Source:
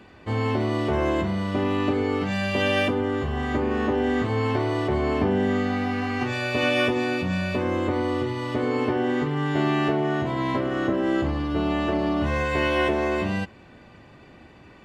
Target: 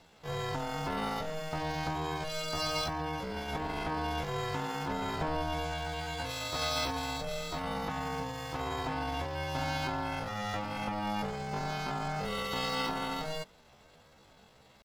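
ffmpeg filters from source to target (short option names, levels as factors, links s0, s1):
-af "aeval=exprs='val(0)*sin(2*PI*200*n/s)':c=same,aemphasis=mode=production:type=50fm,asetrate=70004,aresample=44100,atempo=0.629961,volume=0.422"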